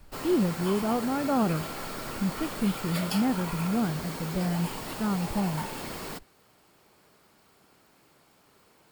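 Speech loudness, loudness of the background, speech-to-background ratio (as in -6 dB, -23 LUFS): -29.5 LUFS, -35.5 LUFS, 6.0 dB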